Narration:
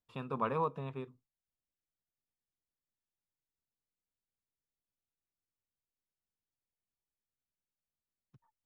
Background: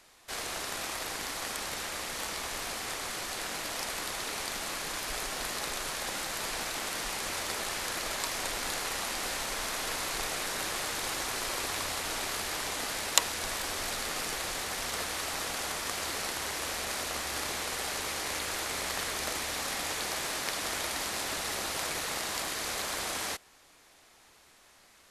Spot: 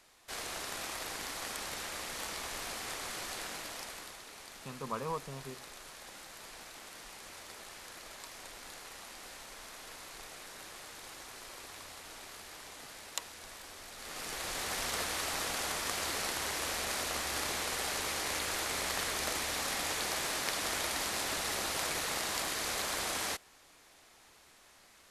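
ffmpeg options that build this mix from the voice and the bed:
-filter_complex "[0:a]adelay=4500,volume=-4dB[a];[1:a]volume=9.5dB,afade=t=out:st=3.31:d=0.92:silence=0.298538,afade=t=in:st=13.94:d=0.79:silence=0.211349[b];[a][b]amix=inputs=2:normalize=0"

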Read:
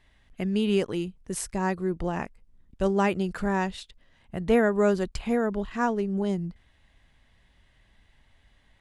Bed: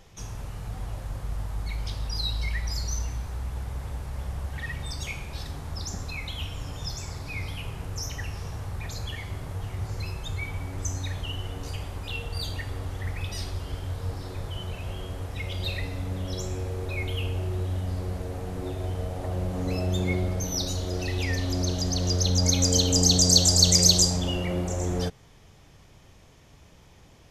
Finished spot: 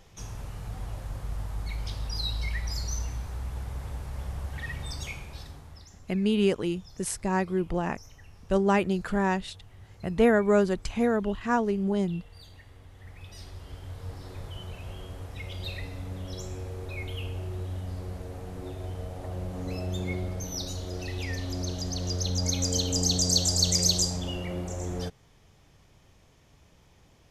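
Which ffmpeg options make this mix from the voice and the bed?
-filter_complex "[0:a]adelay=5700,volume=0.5dB[a];[1:a]volume=10.5dB,afade=t=out:st=4.95:d=0.92:silence=0.158489,afade=t=in:st=12.9:d=1.46:silence=0.237137[b];[a][b]amix=inputs=2:normalize=0"

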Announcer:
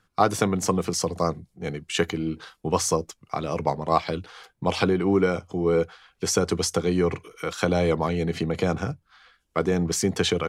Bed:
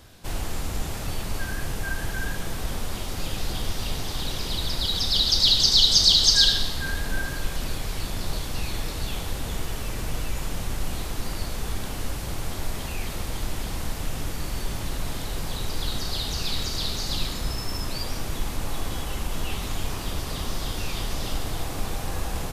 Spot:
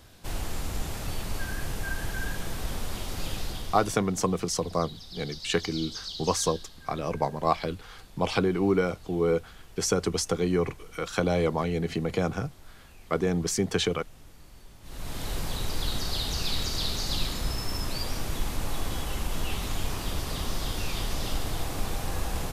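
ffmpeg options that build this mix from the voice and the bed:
-filter_complex "[0:a]adelay=3550,volume=-3dB[a];[1:a]volume=16.5dB,afade=t=out:st=3.32:d=0.67:silence=0.125893,afade=t=in:st=14.82:d=0.47:silence=0.105925[b];[a][b]amix=inputs=2:normalize=0"

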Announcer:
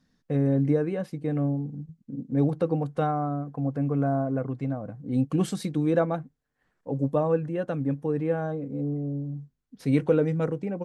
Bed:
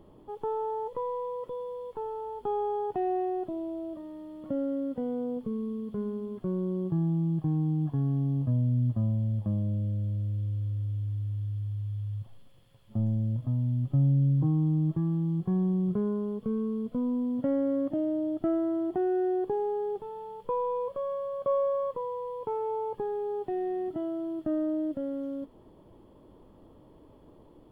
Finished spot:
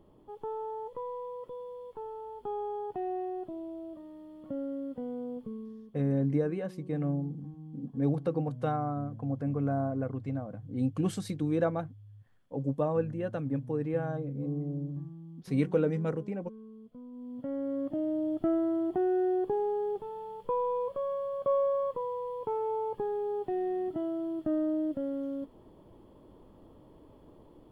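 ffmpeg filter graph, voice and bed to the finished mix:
-filter_complex "[0:a]adelay=5650,volume=-5dB[a];[1:a]volume=12dB,afade=t=out:st=5.37:d=0.6:silence=0.237137,afade=t=in:st=17.11:d=1.23:silence=0.133352[b];[a][b]amix=inputs=2:normalize=0"

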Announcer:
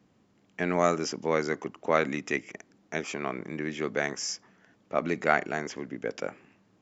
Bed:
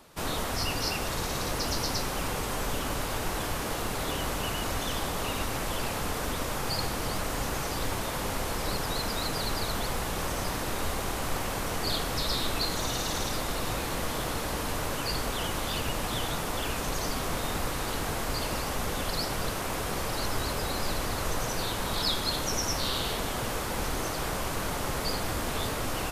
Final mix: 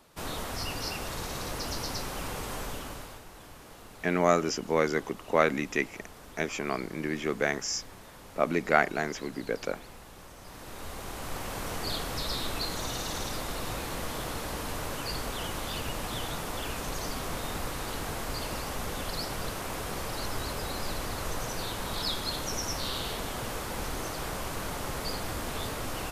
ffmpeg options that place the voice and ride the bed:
-filter_complex "[0:a]adelay=3450,volume=1dB[a];[1:a]volume=9.5dB,afade=t=out:st=2.56:d=0.68:silence=0.223872,afade=t=in:st=10.4:d=1.28:silence=0.199526[b];[a][b]amix=inputs=2:normalize=0"

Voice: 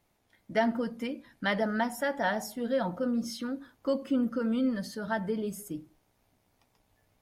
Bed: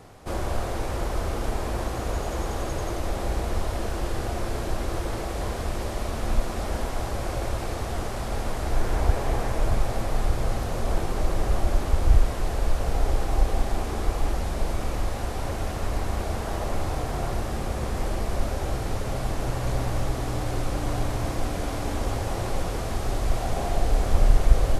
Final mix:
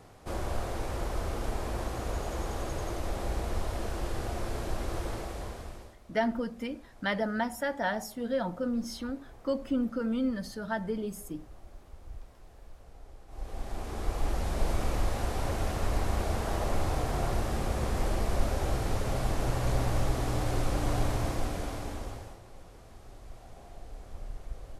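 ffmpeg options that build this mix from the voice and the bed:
-filter_complex "[0:a]adelay=5600,volume=-1.5dB[a];[1:a]volume=19.5dB,afade=t=out:st=5.07:d=0.9:silence=0.0841395,afade=t=in:st=13.27:d=1.44:silence=0.0562341,afade=t=out:st=21.08:d=1.32:silence=0.0891251[b];[a][b]amix=inputs=2:normalize=0"

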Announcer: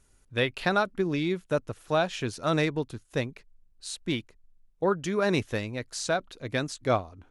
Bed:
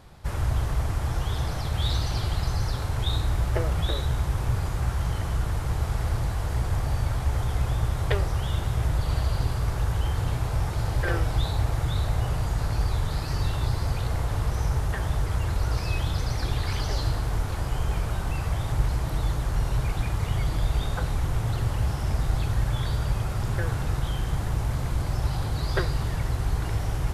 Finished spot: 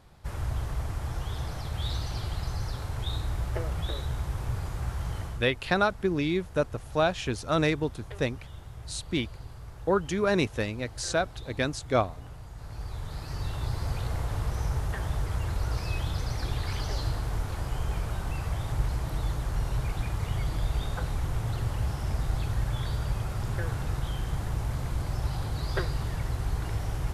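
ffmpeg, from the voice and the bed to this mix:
-filter_complex "[0:a]adelay=5050,volume=0.5dB[a];[1:a]volume=7.5dB,afade=t=out:st=5.2:d=0.28:silence=0.266073,afade=t=in:st=12.53:d=1.42:silence=0.211349[b];[a][b]amix=inputs=2:normalize=0"

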